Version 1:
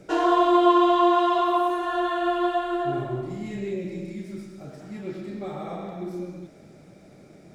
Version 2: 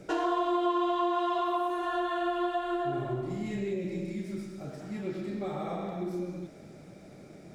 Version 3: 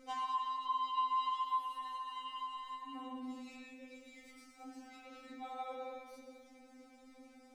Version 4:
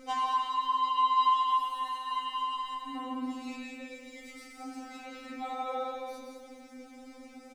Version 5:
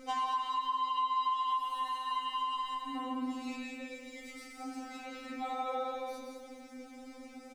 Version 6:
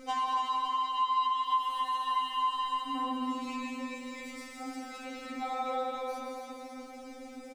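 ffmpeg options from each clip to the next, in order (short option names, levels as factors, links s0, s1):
-af "acompressor=threshold=0.0316:ratio=2.5"
-af "afftfilt=real='re*3.46*eq(mod(b,12),0)':imag='im*3.46*eq(mod(b,12),0)':win_size=2048:overlap=0.75,volume=0.596"
-af "aecho=1:1:166.2|221.6:0.447|0.355,volume=2.66"
-af "acompressor=threshold=0.0282:ratio=3"
-af "aecho=1:1:278|556|834|1112|1390|1668|1946:0.501|0.271|0.146|0.0789|0.0426|0.023|0.0124,volume=1.26"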